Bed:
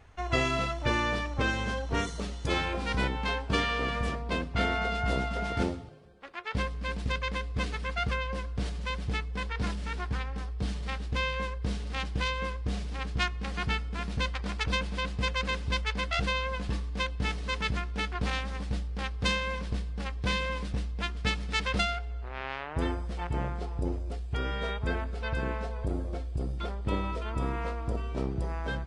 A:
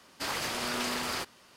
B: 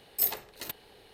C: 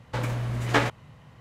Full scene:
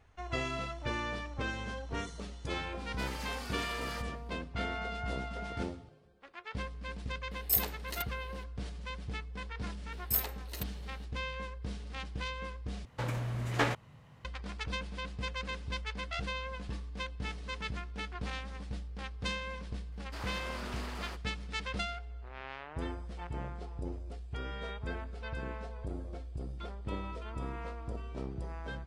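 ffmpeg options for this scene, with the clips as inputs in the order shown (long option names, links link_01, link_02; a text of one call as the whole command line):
ffmpeg -i bed.wav -i cue0.wav -i cue1.wav -i cue2.wav -filter_complex "[1:a]asplit=2[link_01][link_02];[2:a]asplit=2[link_03][link_04];[0:a]volume=-8dB[link_05];[link_01]asplit=2[link_06][link_07];[link_07]adelay=2.3,afreqshift=-1.3[link_08];[link_06][link_08]amix=inputs=2:normalize=1[link_09];[3:a]acontrast=74[link_10];[link_02]highshelf=frequency=3800:gain=-10[link_11];[link_05]asplit=2[link_12][link_13];[link_12]atrim=end=12.854[link_14];[link_10]atrim=end=1.4,asetpts=PTS-STARTPTS,volume=-13dB[link_15];[link_13]atrim=start=14.246[link_16];[link_09]atrim=end=1.56,asetpts=PTS-STARTPTS,volume=-8.5dB,afade=type=in:duration=0.004:curve=hsin,afade=type=out:start_time=1.556:duration=0.004:curve=hsin,adelay=2780[link_17];[link_03]atrim=end=1.13,asetpts=PTS-STARTPTS,volume=-1.5dB,afade=type=in:duration=0.004:curve=hsin,afade=type=out:start_time=1.126:duration=0.004:curve=hsin,adelay=7310[link_18];[link_04]atrim=end=1.13,asetpts=PTS-STARTPTS,volume=-4dB,afade=type=in:duration=0.004:curve=hsin,afade=type=out:start_time=1.126:duration=0.004:curve=hsin,adelay=9920[link_19];[link_11]atrim=end=1.56,asetpts=PTS-STARTPTS,volume=-8.5dB,afade=type=in:duration=0.004:curve=hsin,afade=type=out:start_time=1.556:duration=0.004:curve=hsin,adelay=19920[link_20];[link_14][link_15]acrossfade=duration=0.004:curve1=hsin:curve2=hsin[link_21];[link_21][link_16]acrossfade=duration=0.004:curve1=hsin:curve2=hsin[link_22];[link_22][link_17][link_18][link_19][link_20]amix=inputs=5:normalize=0" out.wav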